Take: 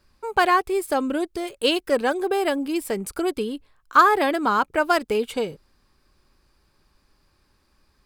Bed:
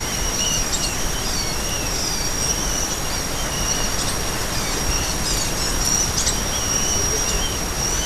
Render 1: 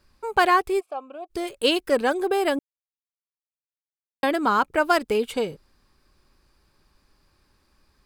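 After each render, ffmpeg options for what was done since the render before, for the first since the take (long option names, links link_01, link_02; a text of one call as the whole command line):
ffmpeg -i in.wav -filter_complex "[0:a]asplit=3[link_01][link_02][link_03];[link_01]afade=type=out:start_time=0.79:duration=0.02[link_04];[link_02]asplit=3[link_05][link_06][link_07];[link_05]bandpass=frequency=730:width_type=q:width=8,volume=0dB[link_08];[link_06]bandpass=frequency=1090:width_type=q:width=8,volume=-6dB[link_09];[link_07]bandpass=frequency=2440:width_type=q:width=8,volume=-9dB[link_10];[link_08][link_09][link_10]amix=inputs=3:normalize=0,afade=type=in:start_time=0.79:duration=0.02,afade=type=out:start_time=1.29:duration=0.02[link_11];[link_03]afade=type=in:start_time=1.29:duration=0.02[link_12];[link_04][link_11][link_12]amix=inputs=3:normalize=0,asplit=3[link_13][link_14][link_15];[link_13]atrim=end=2.59,asetpts=PTS-STARTPTS,afade=type=out:start_time=2.586:duration=0.004:curve=hsin[link_16];[link_14]atrim=start=2.59:end=4.23,asetpts=PTS-STARTPTS,volume=0[link_17];[link_15]atrim=start=4.23,asetpts=PTS-STARTPTS,afade=type=in:duration=0.004:curve=hsin[link_18];[link_16][link_17][link_18]concat=n=3:v=0:a=1" out.wav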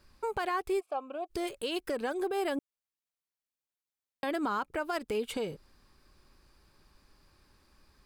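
ffmpeg -i in.wav -af "acompressor=threshold=-31dB:ratio=2,alimiter=limit=-23.5dB:level=0:latency=1:release=104" out.wav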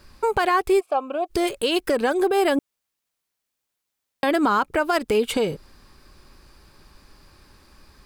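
ffmpeg -i in.wav -af "volume=12dB" out.wav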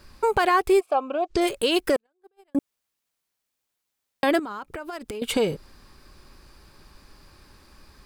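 ffmpeg -i in.wav -filter_complex "[0:a]asplit=3[link_01][link_02][link_03];[link_01]afade=type=out:start_time=0.95:duration=0.02[link_04];[link_02]lowpass=frequency=7200:width=0.5412,lowpass=frequency=7200:width=1.3066,afade=type=in:start_time=0.95:duration=0.02,afade=type=out:start_time=1.4:duration=0.02[link_05];[link_03]afade=type=in:start_time=1.4:duration=0.02[link_06];[link_04][link_05][link_06]amix=inputs=3:normalize=0,asettb=1/sr,asplit=3[link_07][link_08][link_09];[link_07]atrim=end=1.964[link_10];[link_08]atrim=start=1.96:end=2.55,asetpts=PTS-STARTPTS,afade=type=in:duration=0.004:curve=qsin,afade=type=out:start_time=0.586:duration=0.004:curve=qsin,agate=range=-53dB:threshold=-14dB:ratio=16:release=100:detection=peak[link_11];[link_09]atrim=start=2.546[link_12];[link_10][link_11]acrossfade=duration=0.004:curve1=hsin:curve2=qsin[link_13];[link_13][link_12]acrossfade=duration=0.004:curve1=qsin:curve2=hsin,asettb=1/sr,asplit=3[link_14][link_15][link_16];[link_14]atrim=end=4.394[link_17];[link_15]atrim=start=4.39:end=5.22,asetpts=PTS-STARTPTS,afade=type=in:duration=0.004:curve=qsin,afade=type=out:start_time=0.826:duration=0.004:curve=qsin,acompressor=threshold=-30dB:ratio=20:attack=3.2:release=140:knee=1:detection=peak[link_18];[link_16]atrim=start=5.216[link_19];[link_17][link_18]acrossfade=duration=0.004:curve1=hsin:curve2=qsin[link_20];[link_20][link_19]acrossfade=duration=0.004:curve1=qsin:curve2=hsin" out.wav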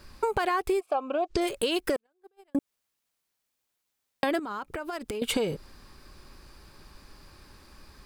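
ffmpeg -i in.wav -af "acompressor=threshold=-23dB:ratio=10" out.wav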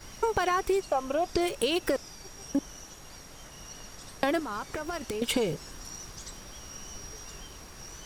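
ffmpeg -i in.wav -i bed.wav -filter_complex "[1:a]volume=-24dB[link_01];[0:a][link_01]amix=inputs=2:normalize=0" out.wav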